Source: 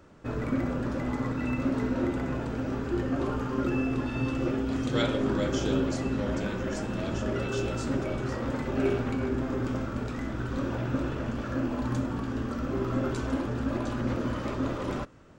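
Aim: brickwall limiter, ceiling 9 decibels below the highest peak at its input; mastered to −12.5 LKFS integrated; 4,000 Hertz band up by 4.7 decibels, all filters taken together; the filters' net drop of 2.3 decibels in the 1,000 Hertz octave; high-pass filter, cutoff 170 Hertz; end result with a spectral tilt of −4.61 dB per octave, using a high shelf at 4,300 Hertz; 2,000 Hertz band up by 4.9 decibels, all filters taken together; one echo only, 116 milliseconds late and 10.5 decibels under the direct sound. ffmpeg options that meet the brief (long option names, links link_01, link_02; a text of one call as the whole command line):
ffmpeg -i in.wav -af "highpass=170,equalizer=frequency=1000:width_type=o:gain=-6.5,equalizer=frequency=2000:width_type=o:gain=8.5,equalizer=frequency=4000:width_type=o:gain=5.5,highshelf=frequency=4300:gain=-4.5,alimiter=limit=-21.5dB:level=0:latency=1,aecho=1:1:116:0.299,volume=19dB" out.wav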